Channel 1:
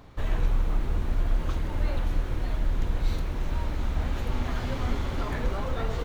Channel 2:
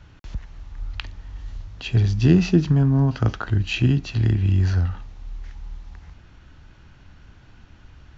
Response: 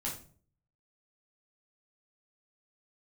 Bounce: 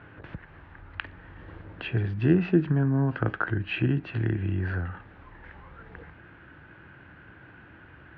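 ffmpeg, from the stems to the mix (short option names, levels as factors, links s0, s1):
-filter_complex "[0:a]asoftclip=type=tanh:threshold=0.0631,aphaser=in_gain=1:out_gain=1:delay=1.1:decay=0.69:speed=0.64:type=sinusoidal,volume=0.2[s0];[1:a]acompressor=threshold=0.02:ratio=1.5,volume=1.33,asplit=2[s1][s2];[s2]apad=whole_len=266425[s3];[s0][s3]sidechaincompress=threshold=0.0224:ratio=8:attack=16:release=1150[s4];[s4][s1]amix=inputs=2:normalize=0,highpass=130,equalizer=f=230:t=q:w=4:g=-4,equalizer=f=330:t=q:w=4:g=5,equalizer=f=500:t=q:w=4:g=3,equalizer=f=1600:t=q:w=4:g=9,lowpass=f=2600:w=0.5412,lowpass=f=2600:w=1.3066"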